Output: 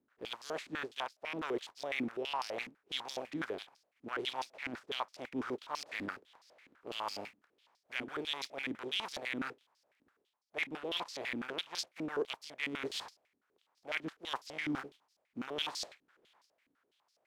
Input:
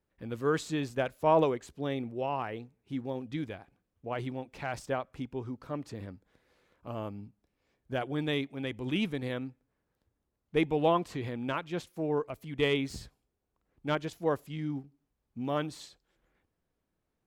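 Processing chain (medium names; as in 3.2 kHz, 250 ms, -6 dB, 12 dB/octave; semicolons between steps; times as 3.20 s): spectral contrast reduction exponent 0.41; reverse; compression 12:1, threshold -41 dBFS, peak gain reduction 22.5 dB; reverse; step-sequenced band-pass 12 Hz 270–5000 Hz; trim +16.5 dB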